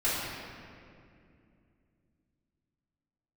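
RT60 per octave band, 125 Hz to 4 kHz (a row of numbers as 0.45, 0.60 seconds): 3.7, 3.7, 2.8, 2.1, 2.1, 1.5 seconds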